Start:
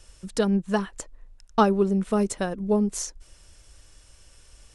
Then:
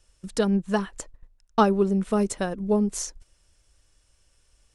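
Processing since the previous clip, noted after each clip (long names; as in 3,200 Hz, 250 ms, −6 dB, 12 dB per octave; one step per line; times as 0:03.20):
noise gate −42 dBFS, range −11 dB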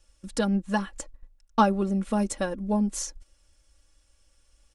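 comb filter 3.6 ms, depth 66%
level −2.5 dB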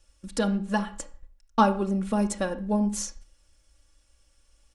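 convolution reverb RT60 0.45 s, pre-delay 25 ms, DRR 11 dB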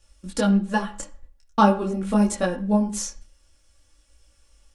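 micro pitch shift up and down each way 16 cents
level +7 dB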